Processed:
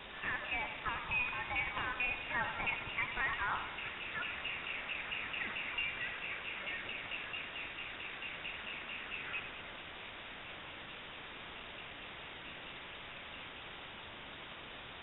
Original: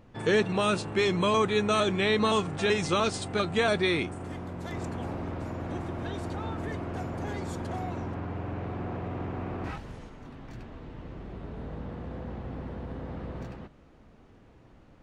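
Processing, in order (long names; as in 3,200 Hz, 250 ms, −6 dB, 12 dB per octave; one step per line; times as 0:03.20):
source passing by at 0:05.94, 38 m/s, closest 23 metres
elliptic band-stop filter 250–870 Hz
downward compressor 6 to 1, threshold −49 dBFS, peak gain reduction 15.5 dB
auto-filter high-pass saw up 4.5 Hz 840–2,600 Hz
in parallel at −4 dB: bit-depth reduction 8 bits, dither triangular
on the sum: pitch vibrato 3.2 Hz 12 cents
feedback echo with a high-pass in the loop 94 ms, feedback 54%, level −9 dB
voice inversion scrambler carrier 3,700 Hz
level +10 dB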